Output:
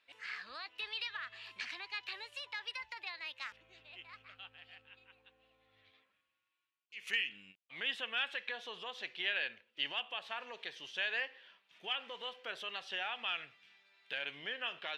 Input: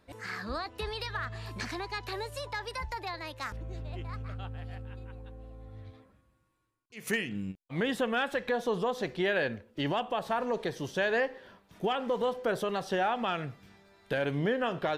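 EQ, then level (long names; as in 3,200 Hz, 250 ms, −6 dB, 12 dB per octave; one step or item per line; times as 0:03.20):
resonant band-pass 2,800 Hz, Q 2.8
+4.0 dB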